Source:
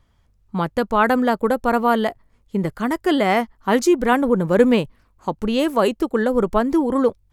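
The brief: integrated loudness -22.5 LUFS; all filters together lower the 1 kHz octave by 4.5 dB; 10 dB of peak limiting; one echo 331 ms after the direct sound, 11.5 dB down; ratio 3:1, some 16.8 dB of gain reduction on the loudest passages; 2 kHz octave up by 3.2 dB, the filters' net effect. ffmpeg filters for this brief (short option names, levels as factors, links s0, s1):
-af "equalizer=f=1000:t=o:g=-8,equalizer=f=2000:t=o:g=7,acompressor=threshold=0.0178:ratio=3,alimiter=level_in=1.78:limit=0.0631:level=0:latency=1,volume=0.562,aecho=1:1:331:0.266,volume=6.31"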